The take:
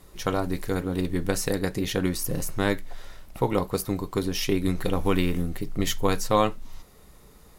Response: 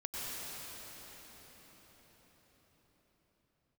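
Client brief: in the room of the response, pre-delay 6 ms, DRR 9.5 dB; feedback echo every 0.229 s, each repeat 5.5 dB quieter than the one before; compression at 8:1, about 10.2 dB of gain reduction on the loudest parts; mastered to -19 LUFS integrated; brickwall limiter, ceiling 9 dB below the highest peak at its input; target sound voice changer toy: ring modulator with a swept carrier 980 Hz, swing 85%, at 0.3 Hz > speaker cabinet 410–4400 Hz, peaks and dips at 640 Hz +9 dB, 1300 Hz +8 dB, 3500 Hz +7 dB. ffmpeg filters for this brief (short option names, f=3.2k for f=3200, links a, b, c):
-filter_complex "[0:a]acompressor=threshold=-28dB:ratio=8,alimiter=level_in=1dB:limit=-24dB:level=0:latency=1,volume=-1dB,aecho=1:1:229|458|687|916|1145|1374|1603:0.531|0.281|0.149|0.079|0.0419|0.0222|0.0118,asplit=2[a][b];[1:a]atrim=start_sample=2205,adelay=6[c];[b][c]afir=irnorm=-1:irlink=0,volume=-13dB[d];[a][d]amix=inputs=2:normalize=0,aeval=exprs='val(0)*sin(2*PI*980*n/s+980*0.85/0.3*sin(2*PI*0.3*n/s))':c=same,highpass=410,equalizer=f=640:t=q:w=4:g=9,equalizer=f=1.3k:t=q:w=4:g=8,equalizer=f=3.5k:t=q:w=4:g=7,lowpass=f=4.4k:w=0.5412,lowpass=f=4.4k:w=1.3066,volume=14dB"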